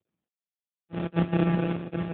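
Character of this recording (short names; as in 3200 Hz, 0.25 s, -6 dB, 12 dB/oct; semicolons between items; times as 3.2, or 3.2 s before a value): a buzz of ramps at a fixed pitch in blocks of 256 samples; phasing stages 8, 3.8 Hz, lowest notch 690–3100 Hz; aliases and images of a low sample rate 1000 Hz, jitter 0%; AMR-NB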